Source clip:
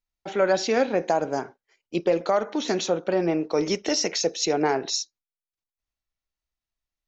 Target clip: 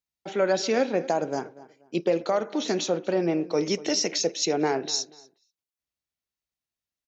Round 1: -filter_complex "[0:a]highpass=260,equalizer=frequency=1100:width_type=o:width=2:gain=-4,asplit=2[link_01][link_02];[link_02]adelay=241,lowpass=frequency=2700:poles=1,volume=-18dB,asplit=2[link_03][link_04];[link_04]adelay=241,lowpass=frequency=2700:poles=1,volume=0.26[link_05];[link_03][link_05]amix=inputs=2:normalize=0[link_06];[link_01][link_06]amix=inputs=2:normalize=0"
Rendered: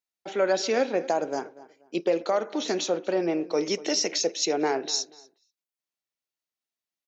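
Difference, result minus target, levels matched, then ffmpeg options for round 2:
125 Hz band −7.0 dB
-filter_complex "[0:a]highpass=96,equalizer=frequency=1100:width_type=o:width=2:gain=-4,asplit=2[link_01][link_02];[link_02]adelay=241,lowpass=frequency=2700:poles=1,volume=-18dB,asplit=2[link_03][link_04];[link_04]adelay=241,lowpass=frequency=2700:poles=1,volume=0.26[link_05];[link_03][link_05]amix=inputs=2:normalize=0[link_06];[link_01][link_06]amix=inputs=2:normalize=0"

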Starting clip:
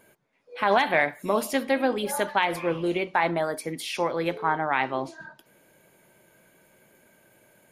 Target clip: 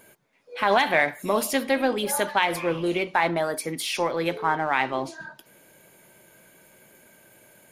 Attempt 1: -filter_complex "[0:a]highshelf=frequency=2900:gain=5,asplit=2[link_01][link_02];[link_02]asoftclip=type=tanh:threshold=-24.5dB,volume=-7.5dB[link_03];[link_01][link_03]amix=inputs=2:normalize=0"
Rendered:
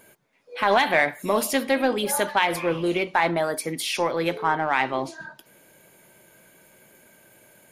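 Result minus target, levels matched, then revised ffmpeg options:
soft clipping: distortion −5 dB
-filter_complex "[0:a]highshelf=frequency=2900:gain=5,asplit=2[link_01][link_02];[link_02]asoftclip=type=tanh:threshold=-36dB,volume=-7.5dB[link_03];[link_01][link_03]amix=inputs=2:normalize=0"

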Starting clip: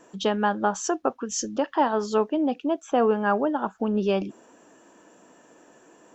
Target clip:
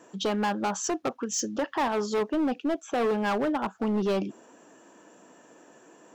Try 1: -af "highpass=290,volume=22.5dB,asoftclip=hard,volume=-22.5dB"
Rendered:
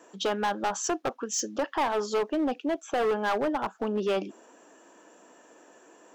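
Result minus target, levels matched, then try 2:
125 Hz band −5.5 dB
-af "highpass=94,volume=22.5dB,asoftclip=hard,volume=-22.5dB"

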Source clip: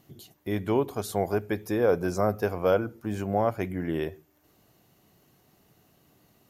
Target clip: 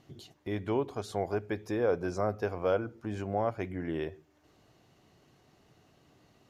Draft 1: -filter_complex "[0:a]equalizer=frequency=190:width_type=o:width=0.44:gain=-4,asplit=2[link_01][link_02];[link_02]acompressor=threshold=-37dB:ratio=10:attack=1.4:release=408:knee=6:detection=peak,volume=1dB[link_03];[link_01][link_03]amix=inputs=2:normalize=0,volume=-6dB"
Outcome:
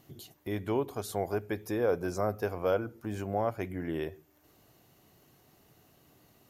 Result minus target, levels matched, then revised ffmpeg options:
8,000 Hz band +5.5 dB
-filter_complex "[0:a]lowpass=6000,equalizer=frequency=190:width_type=o:width=0.44:gain=-4,asplit=2[link_01][link_02];[link_02]acompressor=threshold=-37dB:ratio=10:attack=1.4:release=408:knee=6:detection=peak,volume=1dB[link_03];[link_01][link_03]amix=inputs=2:normalize=0,volume=-6dB"

